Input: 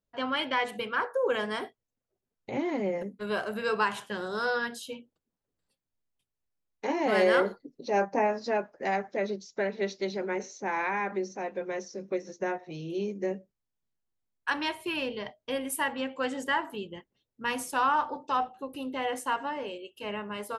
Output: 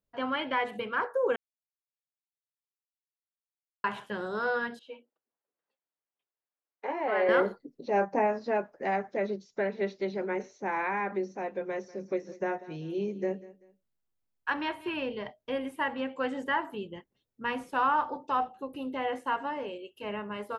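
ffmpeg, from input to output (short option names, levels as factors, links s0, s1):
-filter_complex "[0:a]asettb=1/sr,asplit=3[s0][s1][s2];[s0]atrim=end=4.794[s3];[s1]atrim=start=4.79:end=7.29,asetpts=PTS-STARTPTS,afade=t=in:d=0.004:c=qsin,afade=t=out:st=2.496:d=0.004:c=qsin,highpass=510,lowpass=2300[s4];[s2]atrim=start=7.286[s5];[s3][s4]acrossfade=d=0.004:c1=hsin:c2=qsin[s6];[s6][s5]acrossfade=d=0.004:c1=qsin:c2=hsin,asettb=1/sr,asplit=3[s7][s8][s9];[s7]atrim=end=11.644[s10];[s8]atrim=start=11.64:end=14.97,asetpts=PTS-STARTPTS,afade=t=in:d=0.004:c=qsin,afade=t=out:st=3.326:d=0.004:c=qsin,aecho=1:1:193|386:0.112|0.0325,atrim=end_sample=146853[s11];[s9]atrim=start=14.966[s12];[s10][s11]acrossfade=d=0.004:c1=hsin:c2=qsin[s13];[s13][s12]acrossfade=d=0.004:c1=qsin:c2=hsin,asplit=3[s14][s15][s16];[s14]atrim=end=1.36,asetpts=PTS-STARTPTS,afade=t=out:st=1.356:d=0.004:c=hsin[s17];[s15]atrim=start=1.36:end=3.84,asetpts=PTS-STARTPTS,volume=0[s18];[s16]atrim=start=3.84,asetpts=PTS-STARTPTS,afade=t=in:d=0.004:c=hsin[s19];[s17][s18][s19]concat=n=3:v=0:a=1,acrossover=split=3600[s20][s21];[s21]acompressor=threshold=0.00126:ratio=4:attack=1:release=60[s22];[s20][s22]amix=inputs=2:normalize=0,equalizer=f=6500:w=0.41:g=-4"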